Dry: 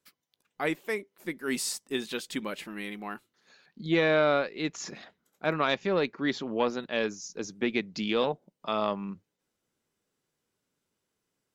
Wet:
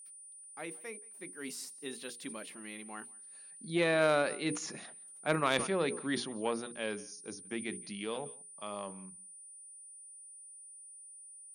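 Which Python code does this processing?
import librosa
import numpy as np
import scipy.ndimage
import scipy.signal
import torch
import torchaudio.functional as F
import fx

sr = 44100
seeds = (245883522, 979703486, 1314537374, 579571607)

p1 = fx.doppler_pass(x, sr, speed_mps=16, closest_m=20.0, pass_at_s=4.82)
p2 = scipy.signal.sosfilt(scipy.signal.butter(2, 51.0, 'highpass', fs=sr, output='sos'), p1)
p3 = p2 + fx.echo_single(p2, sr, ms=174, db=-24.0, dry=0)
p4 = p3 + 10.0 ** (-47.0 / 20.0) * np.sin(2.0 * np.pi * 9300.0 * np.arange(len(p3)) / sr)
p5 = fx.hum_notches(p4, sr, base_hz=60, count=8)
p6 = fx.cheby_harmonics(p5, sr, harmonics=(3, 5, 7), levels_db=(-16, -26, -45), full_scale_db=-12.5)
y = fx.sustainer(p6, sr, db_per_s=96.0)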